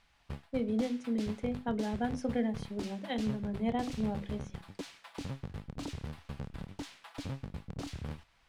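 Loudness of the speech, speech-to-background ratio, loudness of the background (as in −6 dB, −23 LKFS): −35.5 LKFS, 8.5 dB, −44.0 LKFS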